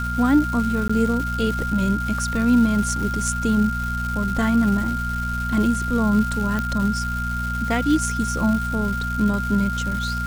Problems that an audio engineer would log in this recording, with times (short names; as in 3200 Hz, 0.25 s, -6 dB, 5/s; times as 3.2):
crackle 580/s -28 dBFS
hum 60 Hz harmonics 4 -27 dBFS
tone 1400 Hz -26 dBFS
0.88–0.9 gap 15 ms
6.59 pop -12 dBFS